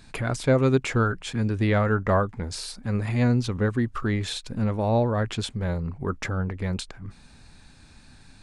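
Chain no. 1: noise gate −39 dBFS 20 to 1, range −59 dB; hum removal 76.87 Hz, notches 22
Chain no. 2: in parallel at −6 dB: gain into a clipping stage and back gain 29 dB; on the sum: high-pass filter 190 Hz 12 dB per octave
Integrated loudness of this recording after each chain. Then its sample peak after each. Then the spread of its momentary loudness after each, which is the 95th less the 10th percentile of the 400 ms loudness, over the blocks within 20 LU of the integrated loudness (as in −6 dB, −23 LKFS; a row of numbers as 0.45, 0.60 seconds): −26.0, −26.0 LKFS; −9.5, −6.5 dBFS; 9, 9 LU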